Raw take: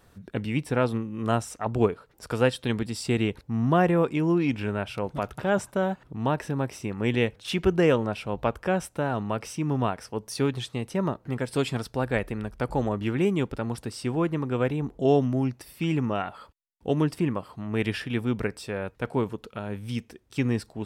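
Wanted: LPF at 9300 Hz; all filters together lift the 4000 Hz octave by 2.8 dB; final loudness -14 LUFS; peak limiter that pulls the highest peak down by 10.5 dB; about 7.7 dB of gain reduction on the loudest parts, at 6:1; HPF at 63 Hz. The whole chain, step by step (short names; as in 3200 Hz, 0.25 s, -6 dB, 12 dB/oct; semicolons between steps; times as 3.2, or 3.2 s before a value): HPF 63 Hz; LPF 9300 Hz; bell 4000 Hz +4 dB; compressor 6:1, threshold -24 dBFS; gain +20 dB; limiter -3 dBFS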